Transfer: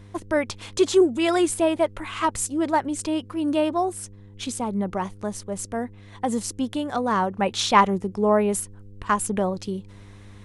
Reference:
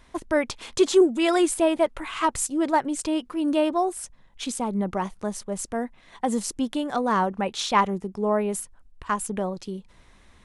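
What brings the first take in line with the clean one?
hum removal 100.7 Hz, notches 5
level 0 dB, from 0:07.41 −4 dB

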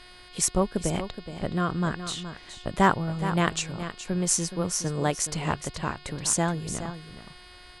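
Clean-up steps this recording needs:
clipped peaks rebuilt −7 dBFS
hum removal 361 Hz, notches 14
downward expander −40 dBFS, range −21 dB
echo removal 421 ms −11 dB

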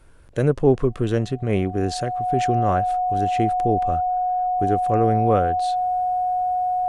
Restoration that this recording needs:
notch filter 730 Hz, Q 30

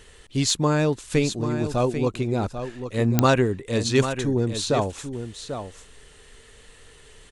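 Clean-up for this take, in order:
clipped peaks rebuilt −7.5 dBFS
click removal
echo removal 792 ms −9.5 dB

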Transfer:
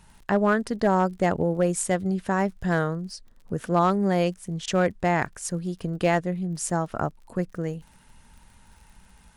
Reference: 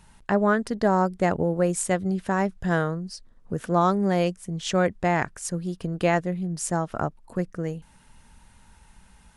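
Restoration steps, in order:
clipped peaks rebuilt −12.5 dBFS
click removal
repair the gap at 0:04.66, 15 ms

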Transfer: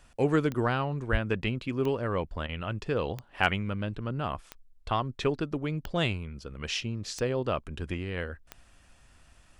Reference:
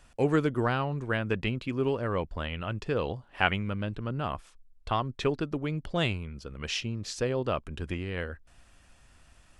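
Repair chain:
clipped peaks rebuilt −9 dBFS
click removal
0:01.11–0:01.23: high-pass filter 140 Hz 24 dB per octave
repair the gap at 0:02.47, 16 ms

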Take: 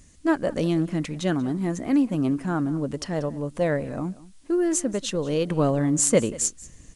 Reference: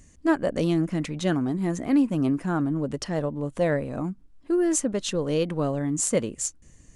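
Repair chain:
downward expander −39 dBFS, range −21 dB
echo removal 186 ms −19.5 dB
level 0 dB, from 0:05.50 −4.5 dB

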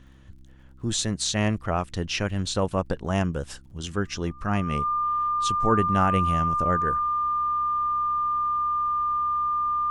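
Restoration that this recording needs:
click removal
hum removal 65.9 Hz, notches 5
notch filter 1,200 Hz, Q 30

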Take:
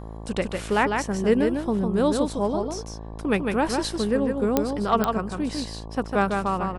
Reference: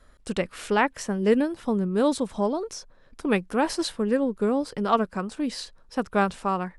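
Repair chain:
click removal
hum removal 54.8 Hz, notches 21
echo removal 152 ms −4.5 dB

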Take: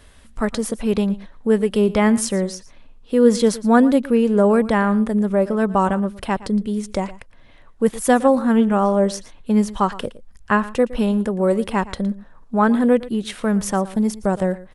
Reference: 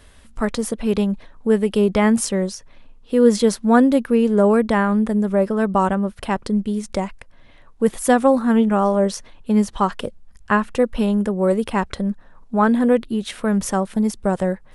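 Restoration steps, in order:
echo removal 115 ms −18 dB

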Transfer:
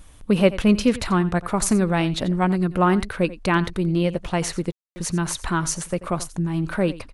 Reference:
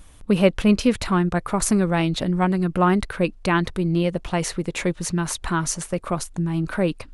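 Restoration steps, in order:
ambience match 0:04.72–0:04.96
echo removal 87 ms −17 dB

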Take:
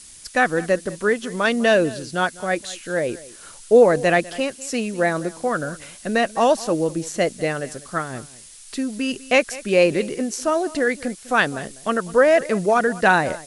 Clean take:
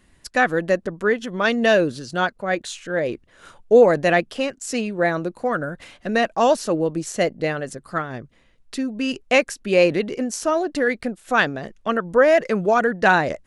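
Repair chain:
noise reduction from a noise print 12 dB
echo removal 200 ms −19.5 dB

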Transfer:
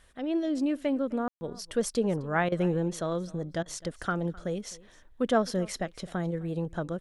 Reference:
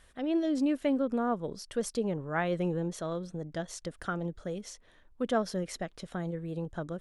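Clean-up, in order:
ambience match 0:01.28–0:01.41
repair the gap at 0:02.49/0:03.63, 28 ms
echo removal 258 ms −22 dB
level 0 dB, from 0:01.59 −4 dB

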